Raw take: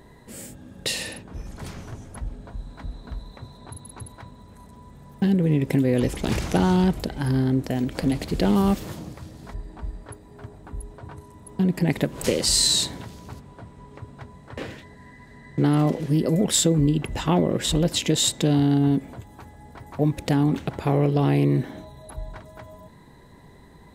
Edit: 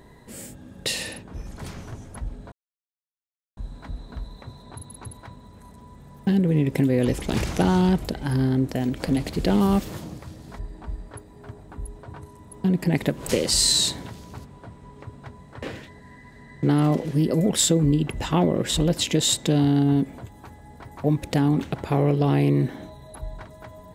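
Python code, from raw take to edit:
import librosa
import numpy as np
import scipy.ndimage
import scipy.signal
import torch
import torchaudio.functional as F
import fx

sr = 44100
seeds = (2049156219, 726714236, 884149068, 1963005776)

y = fx.edit(x, sr, fx.insert_silence(at_s=2.52, length_s=1.05), tone=tone)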